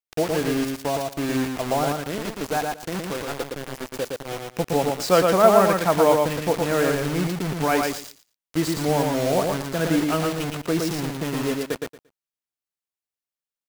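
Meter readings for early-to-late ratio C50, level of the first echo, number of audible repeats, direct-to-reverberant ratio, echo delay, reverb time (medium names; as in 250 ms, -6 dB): no reverb, -3.5 dB, 3, no reverb, 115 ms, no reverb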